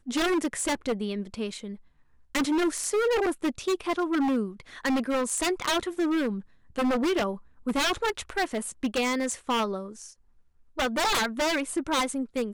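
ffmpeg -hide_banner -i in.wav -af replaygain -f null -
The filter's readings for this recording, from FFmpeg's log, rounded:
track_gain = +8.4 dB
track_peak = 0.072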